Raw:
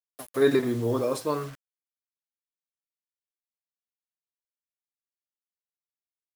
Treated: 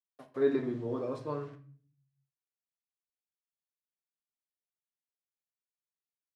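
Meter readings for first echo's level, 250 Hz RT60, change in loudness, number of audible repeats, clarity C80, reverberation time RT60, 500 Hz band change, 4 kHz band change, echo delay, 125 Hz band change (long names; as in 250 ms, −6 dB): no echo audible, 0.90 s, −7.5 dB, no echo audible, 18.0 dB, 0.45 s, −7.0 dB, −16.5 dB, no echo audible, −8.5 dB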